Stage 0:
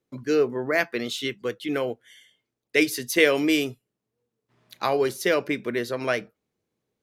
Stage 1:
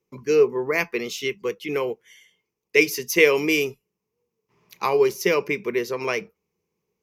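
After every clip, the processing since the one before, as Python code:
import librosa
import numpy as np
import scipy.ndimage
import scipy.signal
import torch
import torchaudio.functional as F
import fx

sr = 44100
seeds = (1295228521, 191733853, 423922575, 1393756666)

y = fx.ripple_eq(x, sr, per_octave=0.79, db=11)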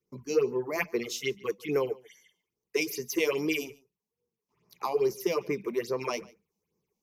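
y = fx.phaser_stages(x, sr, stages=6, low_hz=100.0, high_hz=3300.0, hz=2.4, feedback_pct=30)
y = fx.rider(y, sr, range_db=10, speed_s=2.0)
y = y + 10.0 ** (-23.0 / 20.0) * np.pad(y, (int(145 * sr / 1000.0), 0))[:len(y)]
y = F.gain(torch.from_numpy(y), -4.5).numpy()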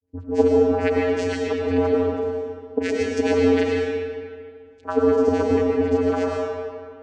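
y = fx.dispersion(x, sr, late='highs', ms=71.0, hz=860.0)
y = fx.vocoder(y, sr, bands=8, carrier='square', carrier_hz=89.6)
y = fx.rev_freeverb(y, sr, rt60_s=2.1, hf_ratio=0.7, predelay_ms=65, drr_db=-2.5)
y = F.gain(torch.from_numpy(y), 7.5).numpy()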